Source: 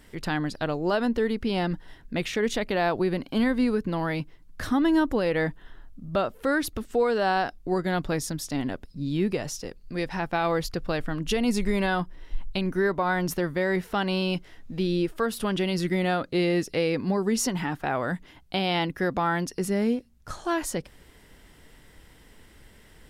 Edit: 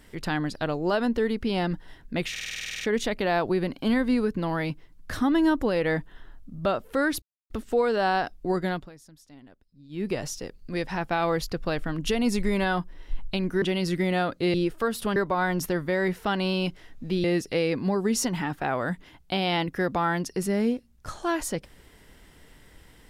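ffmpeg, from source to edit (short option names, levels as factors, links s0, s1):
-filter_complex "[0:a]asplit=18[s0][s1][s2][s3][s4][s5][s6][s7][s8][s9][s10][s11][s12][s13][s14][s15][s16][s17];[s0]atrim=end=2.362[s18];[s1]atrim=start=2.308:end=2.362[s19];[s2]atrim=start=2.308:end=2.362[s20];[s3]atrim=start=2.308:end=2.362[s21];[s4]atrim=start=2.308:end=2.362[s22];[s5]atrim=start=2.308:end=2.362[s23];[s6]atrim=start=2.308:end=2.362[s24];[s7]atrim=start=2.308:end=2.362[s25];[s8]atrim=start=2.308:end=2.362[s26];[s9]atrim=start=2.308:end=2.362[s27];[s10]atrim=start=2.308:end=6.72,asetpts=PTS-STARTPTS,afade=t=out:st=4.408:d=0.004:c=hsin,apad=pad_dur=0.28[s28];[s11]atrim=start=6.72:end=8.12,asetpts=PTS-STARTPTS,afade=t=in:d=0.004:c=hsin,afade=t=out:st=1.15:d=0.25:silence=0.0891251[s29];[s12]atrim=start=8.12:end=9.11,asetpts=PTS-STARTPTS,volume=0.0891[s30];[s13]atrim=start=9.11:end=12.842,asetpts=PTS-STARTPTS,afade=t=in:d=0.25:silence=0.0891251[s31];[s14]atrim=start=15.538:end=16.462[s32];[s15]atrim=start=14.918:end=15.542[s33];[s16]atrim=start=12.838:end=14.922[s34];[s17]atrim=start=16.458[s35];[s18][s19]acrossfade=d=0.004:c1=hsin:c2=hsin[s36];[s36][s20]acrossfade=d=0.004:c1=hsin:c2=hsin[s37];[s37][s21]acrossfade=d=0.004:c1=hsin:c2=hsin[s38];[s38][s22]acrossfade=d=0.004:c1=hsin:c2=hsin[s39];[s39][s23]acrossfade=d=0.004:c1=hsin:c2=hsin[s40];[s40][s24]acrossfade=d=0.004:c1=hsin:c2=hsin[s41];[s41][s25]acrossfade=d=0.004:c1=hsin:c2=hsin[s42];[s42][s26]acrossfade=d=0.004:c1=hsin:c2=hsin[s43];[s43][s27]acrossfade=d=0.004:c1=hsin:c2=hsin[s44];[s28][s29][s30][s31]concat=n=4:v=0:a=1[s45];[s44][s45]acrossfade=d=0.004:c1=hsin:c2=hsin[s46];[s46][s32]acrossfade=d=0.004:c1=hsin:c2=hsin[s47];[s47][s33]acrossfade=d=0.004:c1=hsin:c2=hsin[s48];[s48][s34]acrossfade=d=0.004:c1=hsin:c2=hsin[s49];[s49][s35]acrossfade=d=0.004:c1=hsin:c2=hsin"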